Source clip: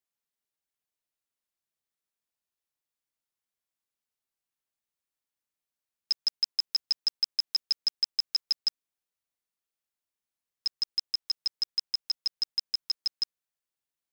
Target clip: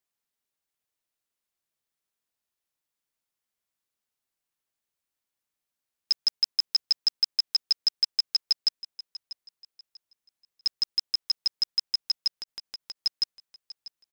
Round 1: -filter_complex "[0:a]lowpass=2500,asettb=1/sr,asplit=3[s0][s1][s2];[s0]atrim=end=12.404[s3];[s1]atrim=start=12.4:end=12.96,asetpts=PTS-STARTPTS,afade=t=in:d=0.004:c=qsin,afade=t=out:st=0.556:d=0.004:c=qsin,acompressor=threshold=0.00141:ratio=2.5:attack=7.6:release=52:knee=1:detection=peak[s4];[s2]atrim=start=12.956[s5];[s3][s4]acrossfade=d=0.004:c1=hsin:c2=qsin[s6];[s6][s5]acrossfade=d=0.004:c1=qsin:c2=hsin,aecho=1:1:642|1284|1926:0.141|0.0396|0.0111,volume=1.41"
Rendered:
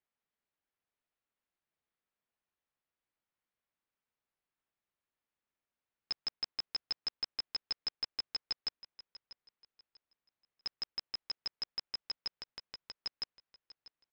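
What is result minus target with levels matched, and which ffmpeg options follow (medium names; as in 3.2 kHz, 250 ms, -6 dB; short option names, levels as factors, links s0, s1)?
2 kHz band +11.5 dB
-filter_complex "[0:a]asettb=1/sr,asplit=3[s0][s1][s2];[s0]atrim=end=12.404[s3];[s1]atrim=start=12.4:end=12.96,asetpts=PTS-STARTPTS,afade=t=in:d=0.004:c=qsin,afade=t=out:st=0.556:d=0.004:c=qsin,acompressor=threshold=0.00141:ratio=2.5:attack=7.6:release=52:knee=1:detection=peak[s4];[s2]atrim=start=12.956[s5];[s3][s4]acrossfade=d=0.004:c1=hsin:c2=qsin[s6];[s6][s5]acrossfade=d=0.004:c1=qsin:c2=hsin,aecho=1:1:642|1284|1926:0.141|0.0396|0.0111,volume=1.41"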